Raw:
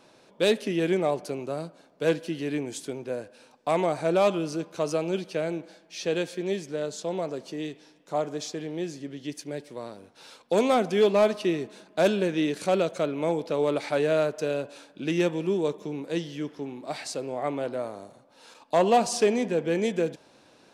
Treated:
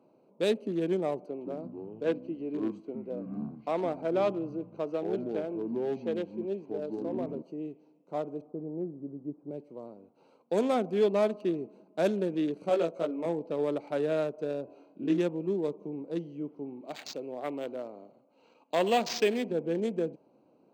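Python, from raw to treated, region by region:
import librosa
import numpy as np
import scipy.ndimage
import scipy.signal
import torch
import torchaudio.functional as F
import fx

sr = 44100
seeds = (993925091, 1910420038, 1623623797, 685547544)

y = fx.chain(x, sr, fx.bandpass_edges(low_hz=210.0, high_hz=4600.0),
    fx.echo_pitch(ms=148, semitones=-7, count=2, db_per_echo=-6.0), at=(1.26, 7.42))
y = fx.chain(y, sr, fx.delta_hold(step_db=-54.5),
    fx.lowpass(hz=1300.0, slope=24),
    fx.low_shelf(hz=93.0, db=10.0), at=(8.41, 9.51))
y = fx.chain(y, sr, fx.highpass(hz=280.0, slope=6),
    fx.doubler(ms=18.0, db=-2.0), at=(12.69, 13.26))
y = fx.chain(y, sr, fx.air_absorb(metres=56.0),
    fx.doubler(ms=25.0, db=-5.5),
    fx.room_flutter(wall_m=3.8, rt60_s=0.27), at=(14.65, 15.18))
y = fx.chain(y, sr, fx.weighting(curve='D'),
    fx.resample_linear(factor=4), at=(16.81, 19.51))
y = fx.wiener(y, sr, points=25)
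y = scipy.signal.sosfilt(scipy.signal.butter(2, 190.0, 'highpass', fs=sr, output='sos'), y)
y = fx.low_shelf(y, sr, hz=430.0, db=7.5)
y = y * 10.0 ** (-7.5 / 20.0)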